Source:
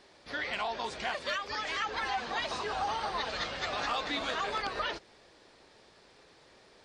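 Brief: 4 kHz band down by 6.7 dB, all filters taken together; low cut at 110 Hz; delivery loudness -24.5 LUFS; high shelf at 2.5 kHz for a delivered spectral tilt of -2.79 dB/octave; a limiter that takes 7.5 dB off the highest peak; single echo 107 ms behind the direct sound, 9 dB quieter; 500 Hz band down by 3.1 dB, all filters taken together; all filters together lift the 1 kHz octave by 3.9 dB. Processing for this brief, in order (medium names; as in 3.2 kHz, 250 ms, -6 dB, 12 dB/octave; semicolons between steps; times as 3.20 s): high-pass 110 Hz; peaking EQ 500 Hz -7 dB; peaking EQ 1 kHz +8 dB; treble shelf 2.5 kHz -3.5 dB; peaking EQ 4 kHz -6 dB; peak limiter -25 dBFS; delay 107 ms -9 dB; trim +9.5 dB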